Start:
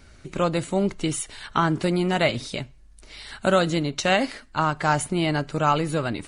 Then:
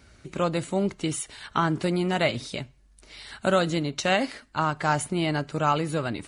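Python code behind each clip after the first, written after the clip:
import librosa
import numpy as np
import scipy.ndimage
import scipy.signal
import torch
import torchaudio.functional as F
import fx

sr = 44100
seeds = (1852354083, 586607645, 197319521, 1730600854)

y = scipy.signal.sosfilt(scipy.signal.butter(2, 47.0, 'highpass', fs=sr, output='sos'), x)
y = y * librosa.db_to_amplitude(-2.5)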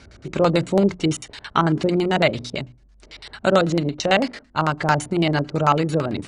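y = fx.filter_lfo_lowpass(x, sr, shape='square', hz=9.0, low_hz=530.0, high_hz=5900.0, q=0.97)
y = fx.hum_notches(y, sr, base_hz=60, count=5)
y = fx.rider(y, sr, range_db=4, speed_s=2.0)
y = y * librosa.db_to_amplitude(6.0)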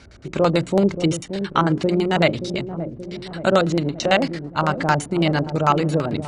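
y = fx.echo_wet_lowpass(x, sr, ms=577, feedback_pct=57, hz=530.0, wet_db=-8.5)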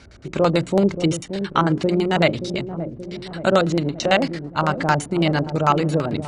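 y = x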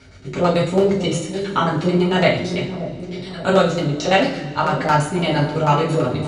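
y = fx.rev_double_slope(x, sr, seeds[0], early_s=0.41, late_s=2.3, knee_db=-18, drr_db=-5.5)
y = y * librosa.db_to_amplitude(-4.5)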